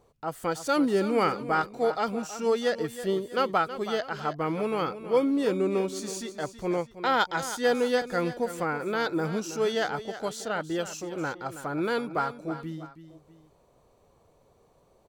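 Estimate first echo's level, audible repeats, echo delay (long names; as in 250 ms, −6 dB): −12.5 dB, 2, 323 ms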